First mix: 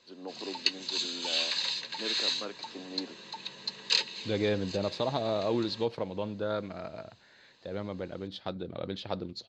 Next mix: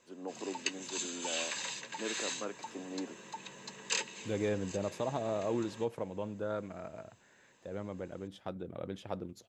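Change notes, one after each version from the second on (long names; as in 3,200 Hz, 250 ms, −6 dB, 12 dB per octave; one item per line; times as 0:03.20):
second voice −4.0 dB
master: remove low-pass with resonance 4,300 Hz, resonance Q 7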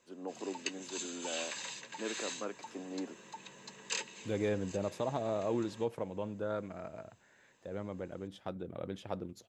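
background −3.5 dB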